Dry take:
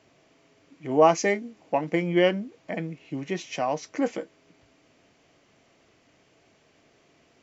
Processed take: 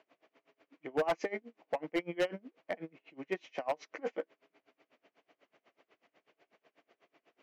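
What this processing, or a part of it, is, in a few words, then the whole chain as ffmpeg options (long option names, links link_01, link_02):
helicopter radio: -af "highpass=360,lowpass=2900,aeval=exprs='val(0)*pow(10,-28*(0.5-0.5*cos(2*PI*8.1*n/s))/20)':channel_layout=same,asoftclip=type=hard:threshold=-25dB"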